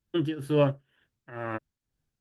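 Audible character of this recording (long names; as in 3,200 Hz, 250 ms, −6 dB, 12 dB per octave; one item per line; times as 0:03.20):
tremolo triangle 2.1 Hz, depth 90%
Opus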